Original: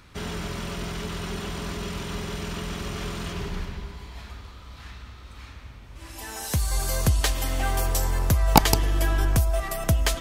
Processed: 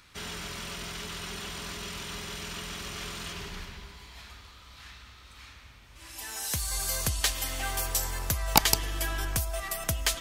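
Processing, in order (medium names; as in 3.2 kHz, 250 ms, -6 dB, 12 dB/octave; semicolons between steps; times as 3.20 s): 2.21–4.20 s: crackle 310 per s -62 dBFS; tilt shelf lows -6 dB, about 1.1 kHz; trim -5 dB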